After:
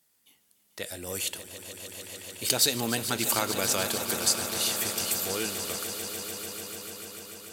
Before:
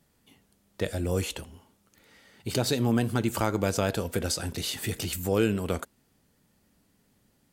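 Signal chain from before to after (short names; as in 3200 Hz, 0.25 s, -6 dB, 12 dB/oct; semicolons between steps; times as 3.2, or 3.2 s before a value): Doppler pass-by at 2.88, 9 m/s, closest 12 m; tilt +3.5 dB/oct; swelling echo 0.147 s, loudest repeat 5, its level -13 dB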